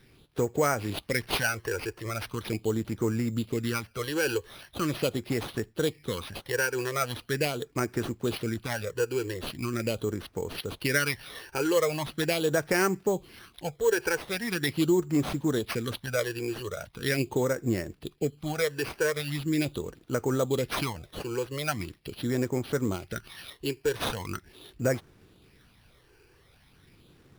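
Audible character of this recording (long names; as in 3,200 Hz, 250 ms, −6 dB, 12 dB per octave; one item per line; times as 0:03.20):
phaser sweep stages 12, 0.41 Hz, lowest notch 200–3,600 Hz
aliases and images of a low sample rate 7,300 Hz, jitter 0%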